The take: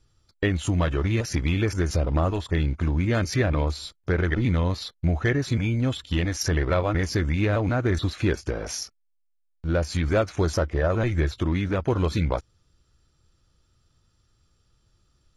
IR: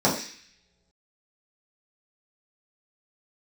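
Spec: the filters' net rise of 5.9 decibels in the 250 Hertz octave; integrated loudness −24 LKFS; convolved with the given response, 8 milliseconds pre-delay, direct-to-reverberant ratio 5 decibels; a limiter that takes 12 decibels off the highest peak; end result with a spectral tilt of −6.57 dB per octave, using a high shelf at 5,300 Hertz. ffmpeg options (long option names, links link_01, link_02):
-filter_complex "[0:a]equalizer=frequency=250:width_type=o:gain=8,highshelf=frequency=5300:gain=3,alimiter=limit=-20dB:level=0:latency=1,asplit=2[link_01][link_02];[1:a]atrim=start_sample=2205,adelay=8[link_03];[link_02][link_03]afir=irnorm=-1:irlink=0,volume=-22dB[link_04];[link_01][link_04]amix=inputs=2:normalize=0,volume=2.5dB"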